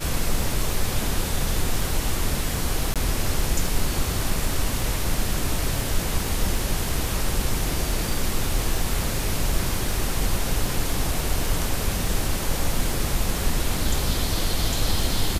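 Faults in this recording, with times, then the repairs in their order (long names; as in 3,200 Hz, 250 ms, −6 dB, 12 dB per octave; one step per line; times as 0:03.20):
surface crackle 25 per second −29 dBFS
0:02.94–0:02.96: drop-out 17 ms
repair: click removal
repair the gap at 0:02.94, 17 ms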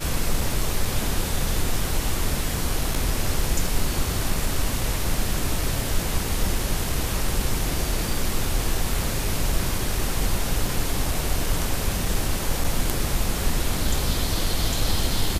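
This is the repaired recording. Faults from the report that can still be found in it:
none of them is left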